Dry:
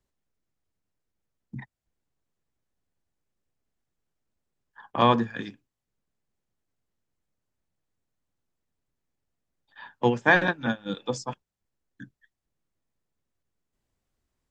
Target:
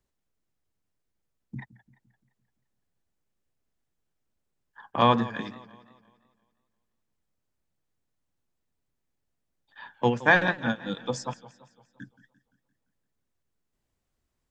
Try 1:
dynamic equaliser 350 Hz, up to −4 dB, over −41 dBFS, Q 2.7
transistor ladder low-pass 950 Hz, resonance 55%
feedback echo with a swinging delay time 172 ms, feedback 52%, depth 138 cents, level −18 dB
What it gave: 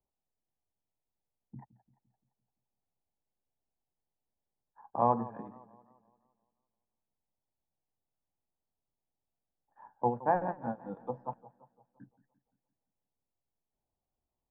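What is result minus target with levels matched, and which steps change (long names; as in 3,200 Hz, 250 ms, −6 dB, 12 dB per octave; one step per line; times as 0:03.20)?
1,000 Hz band +3.5 dB
remove: transistor ladder low-pass 950 Hz, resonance 55%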